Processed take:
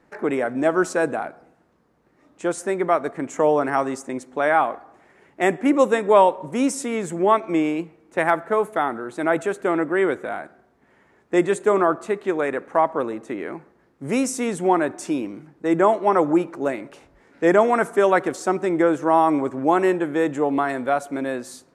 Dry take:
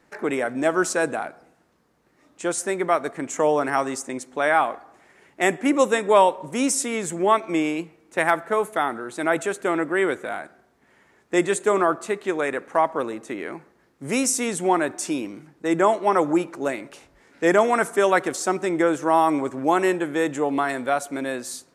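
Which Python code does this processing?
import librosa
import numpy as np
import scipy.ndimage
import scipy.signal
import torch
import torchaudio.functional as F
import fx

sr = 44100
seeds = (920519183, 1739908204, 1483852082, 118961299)

y = fx.high_shelf(x, sr, hz=2300.0, db=-10.0)
y = y * 10.0 ** (2.5 / 20.0)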